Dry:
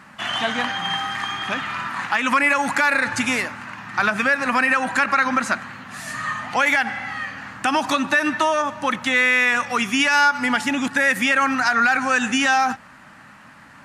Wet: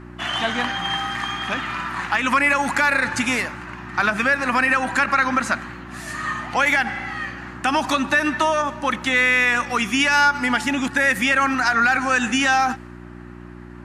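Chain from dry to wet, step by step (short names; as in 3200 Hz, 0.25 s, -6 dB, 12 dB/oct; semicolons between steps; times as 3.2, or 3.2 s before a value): buzz 60 Hz, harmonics 6, -39 dBFS -1 dB/oct; mismatched tape noise reduction decoder only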